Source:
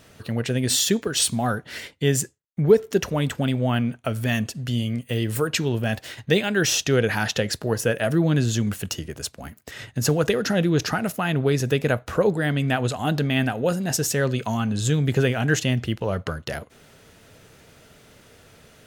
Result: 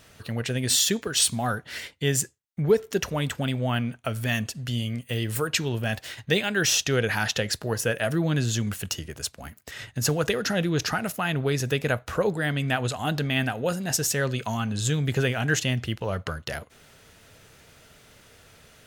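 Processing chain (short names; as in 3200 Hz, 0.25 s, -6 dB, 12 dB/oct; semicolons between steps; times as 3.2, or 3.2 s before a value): bell 280 Hz -5.5 dB 2.8 oct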